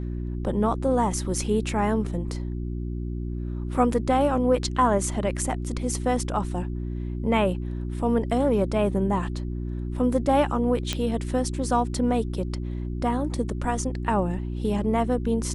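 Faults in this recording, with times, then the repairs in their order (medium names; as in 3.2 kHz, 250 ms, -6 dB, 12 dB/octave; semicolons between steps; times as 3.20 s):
hum 60 Hz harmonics 6 -30 dBFS
10.93 s: pop -11 dBFS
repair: de-click; de-hum 60 Hz, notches 6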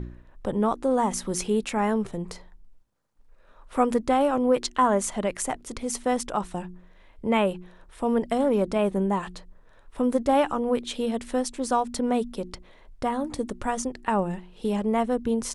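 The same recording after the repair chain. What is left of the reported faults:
nothing left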